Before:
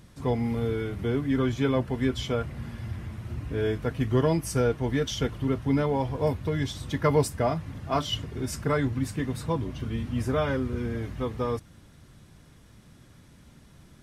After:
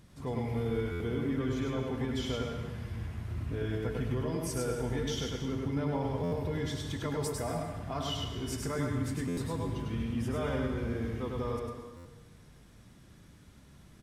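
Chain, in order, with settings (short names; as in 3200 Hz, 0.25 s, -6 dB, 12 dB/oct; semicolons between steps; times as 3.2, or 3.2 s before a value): limiter -21.5 dBFS, peak gain reduction 11 dB; echo 0.101 s -3 dB; on a send at -5.5 dB: reverb RT60 1.2 s, pre-delay 0.103 s; on the sum: stuck buffer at 0.91/6.23/9.28/11.96, samples 512, times 7; gain -5.5 dB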